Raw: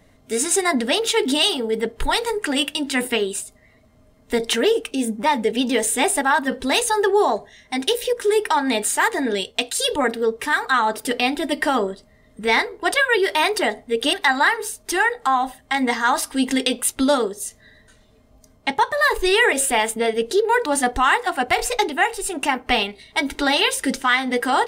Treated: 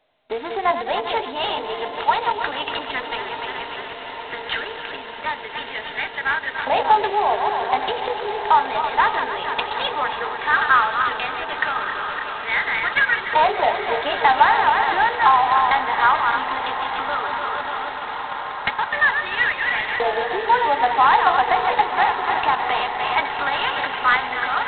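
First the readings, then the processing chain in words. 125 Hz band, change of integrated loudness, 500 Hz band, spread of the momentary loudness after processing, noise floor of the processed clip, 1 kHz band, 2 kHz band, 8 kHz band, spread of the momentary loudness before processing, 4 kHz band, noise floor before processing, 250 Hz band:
n/a, 0.0 dB, -5.0 dB, 12 LU, -33 dBFS, +4.5 dB, +1.0 dB, under -40 dB, 6 LU, -4.5 dB, -55 dBFS, -14.0 dB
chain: regenerating reverse delay 0.147 s, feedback 70%, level -8 dB; HPF 200 Hz 6 dB/oct; gate with hold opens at -35 dBFS; tilt shelf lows +9.5 dB; compressor 6:1, threshold -24 dBFS, peak gain reduction 16 dB; added harmonics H 2 -25 dB, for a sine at -12.5 dBFS; LFO high-pass saw up 0.15 Hz 770–1800 Hz; on a send: diffused feedback echo 1.209 s, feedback 70%, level -11 dB; on the sum: gain +8 dB; G.726 16 kbps 8000 Hz

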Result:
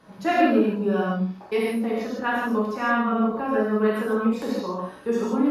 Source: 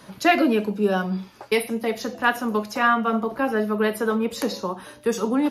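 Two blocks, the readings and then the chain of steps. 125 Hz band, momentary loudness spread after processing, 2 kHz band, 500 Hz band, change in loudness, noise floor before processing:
n/a, 7 LU, -3.5 dB, -0.5 dB, -0.5 dB, -48 dBFS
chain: high shelf 2700 Hz -11.5 dB; non-linear reverb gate 0.19 s flat, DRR -6 dB; gain -7 dB

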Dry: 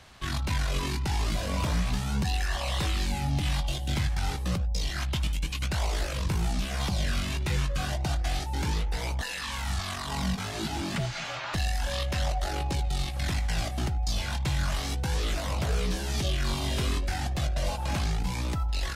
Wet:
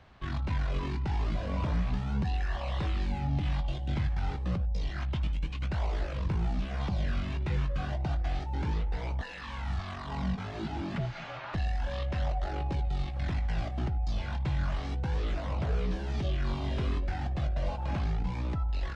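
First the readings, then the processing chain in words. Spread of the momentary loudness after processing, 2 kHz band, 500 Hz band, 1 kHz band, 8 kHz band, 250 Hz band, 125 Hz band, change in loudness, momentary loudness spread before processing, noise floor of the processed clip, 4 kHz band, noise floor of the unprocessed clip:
4 LU, -7.0 dB, -3.0 dB, -4.0 dB, -21.0 dB, -2.0 dB, -2.0 dB, -3.0 dB, 3 LU, -40 dBFS, -12.0 dB, -35 dBFS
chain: tape spacing loss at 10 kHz 29 dB; gain -1.5 dB

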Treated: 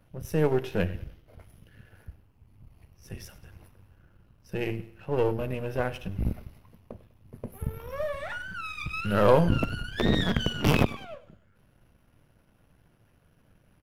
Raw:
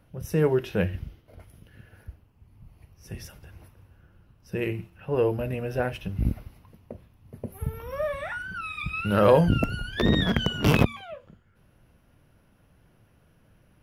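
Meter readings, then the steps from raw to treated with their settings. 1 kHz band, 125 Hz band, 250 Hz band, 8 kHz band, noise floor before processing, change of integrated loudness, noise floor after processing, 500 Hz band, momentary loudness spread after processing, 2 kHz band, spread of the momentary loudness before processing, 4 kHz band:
-1.0 dB, -2.5 dB, -2.5 dB, -1.0 dB, -61 dBFS, -2.5 dB, -64 dBFS, -2.0 dB, 20 LU, -2.0 dB, 20 LU, -2.0 dB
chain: half-wave gain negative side -7 dB; feedback echo 0.1 s, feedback 40%, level -18.5 dB

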